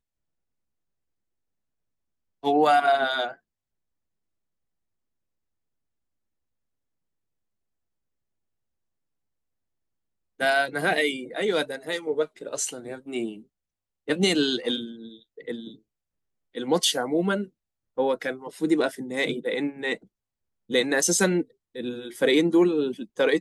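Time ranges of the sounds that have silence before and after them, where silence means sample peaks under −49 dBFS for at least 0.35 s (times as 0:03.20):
0:02.43–0:03.35
0:10.39–0:13.43
0:14.08–0:15.79
0:16.54–0:17.48
0:17.97–0:20.05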